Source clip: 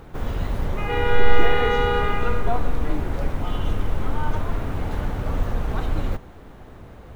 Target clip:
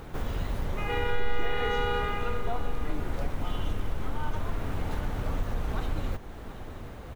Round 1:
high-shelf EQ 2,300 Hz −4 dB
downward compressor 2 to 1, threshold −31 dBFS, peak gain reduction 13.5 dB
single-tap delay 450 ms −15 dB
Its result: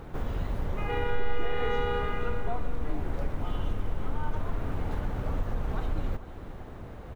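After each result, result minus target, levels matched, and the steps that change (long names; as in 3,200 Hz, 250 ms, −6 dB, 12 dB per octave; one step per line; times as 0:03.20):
echo 278 ms early; 4,000 Hz band −4.5 dB
change: single-tap delay 728 ms −15 dB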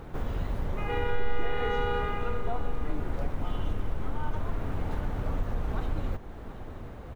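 4,000 Hz band −4.5 dB
change: high-shelf EQ 2,300 Hz +4.5 dB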